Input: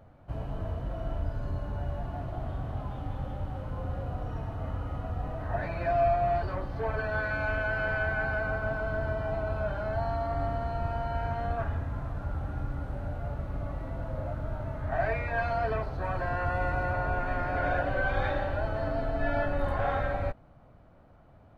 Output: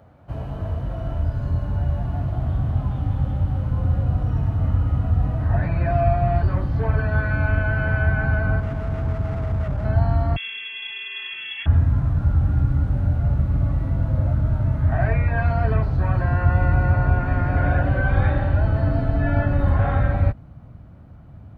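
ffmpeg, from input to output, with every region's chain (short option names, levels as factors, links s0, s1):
-filter_complex "[0:a]asettb=1/sr,asplit=3[s0][s1][s2];[s0]atrim=end=8.604[s3];[s1]atrim=start=8.6:end=9.85,asetpts=PTS-STARTPTS,afade=t=in:d=0.004:c=qsin,afade=t=out:st=1.246:d=0.004:c=qsin,lowpass=f=1100:w=0.5412,lowpass=f=1100:w=1.3066,asoftclip=type=hard:threshold=0.0224[s4];[s2]atrim=start=9.846[s5];[s3][s4]acrossfade=d=0.004:c1=hsin:c2=qsin[s6];[s6][s5]acrossfade=d=0.004:c1=qsin:c2=hsin,asettb=1/sr,asplit=3[s7][s8][s9];[s7]atrim=end=10.364[s10];[s8]atrim=start=10.36:end=11.66,asetpts=PTS-STARTPTS,afade=t=in:d=0.004:c=qsin,afade=t=out:st=1.296:d=0.004:c=qsin,equalizer=f=290:t=o:w=0.65:g=-11.5,lowpass=f=2900:t=q:w=0.5098,lowpass=f=2900:t=q:w=0.6013,lowpass=f=2900:t=q:w=0.9,lowpass=f=2900:t=q:w=2.563,afreqshift=-3400[s11];[s9]atrim=start=11.656[s12];[s10][s11]acrossfade=d=0.004:c1=hsin:c2=qsin[s13];[s13][s12]acrossfade=d=0.004:c1=qsin:c2=hsin,acrossover=split=2800[s14][s15];[s15]acompressor=threshold=0.001:ratio=4:attack=1:release=60[s16];[s14][s16]amix=inputs=2:normalize=0,highpass=61,asubboost=boost=4.5:cutoff=230,volume=1.78"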